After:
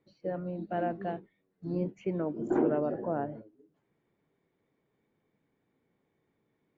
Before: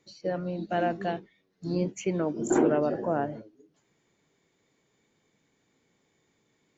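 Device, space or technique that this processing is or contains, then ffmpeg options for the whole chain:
phone in a pocket: -af "lowpass=3200,highshelf=f=2000:g=-10.5,volume=0.668"

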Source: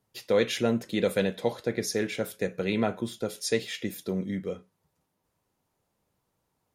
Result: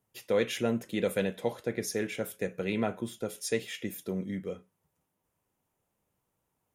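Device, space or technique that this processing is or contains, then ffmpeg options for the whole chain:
exciter from parts: -filter_complex "[0:a]asplit=2[s0][s1];[s1]highpass=f=3100:w=0.5412,highpass=f=3100:w=1.3066,asoftclip=type=tanh:threshold=0.0501,highpass=2900,volume=0.596[s2];[s0][s2]amix=inputs=2:normalize=0,volume=0.668"

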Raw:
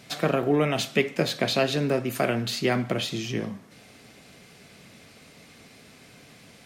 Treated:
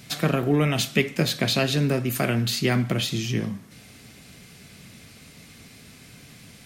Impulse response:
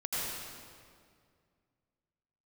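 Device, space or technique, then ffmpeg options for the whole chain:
smiley-face EQ: -af "lowshelf=f=180:g=7.5,equalizer=f=590:t=o:w=1.9:g=-6,highshelf=f=9500:g=8,volume=1.33"

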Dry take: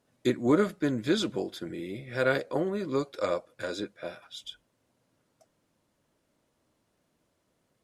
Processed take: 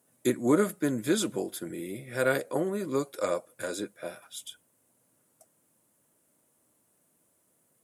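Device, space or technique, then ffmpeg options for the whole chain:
budget condenser microphone: -af "highpass=110,highshelf=f=6800:t=q:w=1.5:g=13.5"

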